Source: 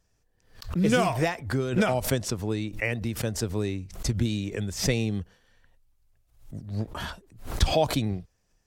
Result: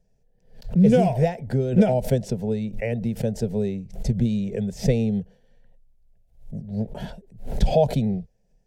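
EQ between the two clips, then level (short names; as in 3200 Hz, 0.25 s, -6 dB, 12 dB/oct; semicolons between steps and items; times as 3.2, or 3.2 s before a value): tilt shelf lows +9 dB, about 1400 Hz; fixed phaser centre 310 Hz, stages 6; 0.0 dB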